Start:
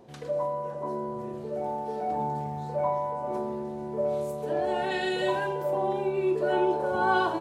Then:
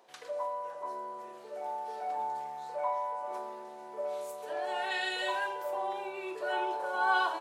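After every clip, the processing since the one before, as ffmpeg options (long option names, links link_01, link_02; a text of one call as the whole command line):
ffmpeg -i in.wav -af "highpass=880" out.wav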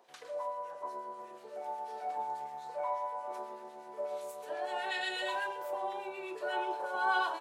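ffmpeg -i in.wav -filter_complex "[0:a]acrossover=split=1400[link_01][link_02];[link_01]aeval=exprs='val(0)*(1-0.5/2+0.5/2*cos(2*PI*8.2*n/s))':channel_layout=same[link_03];[link_02]aeval=exprs='val(0)*(1-0.5/2-0.5/2*cos(2*PI*8.2*n/s))':channel_layout=same[link_04];[link_03][link_04]amix=inputs=2:normalize=0" out.wav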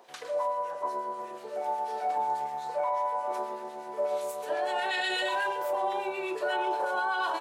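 ffmpeg -i in.wav -af "alimiter=level_in=6dB:limit=-24dB:level=0:latency=1:release=19,volume=-6dB,volume=8.5dB" out.wav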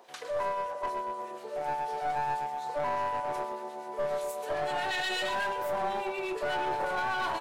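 ffmpeg -i in.wav -af "aeval=exprs='clip(val(0),-1,0.0282)':channel_layout=same" out.wav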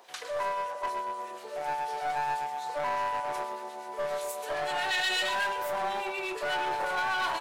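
ffmpeg -i in.wav -af "tiltshelf=frequency=780:gain=-5" out.wav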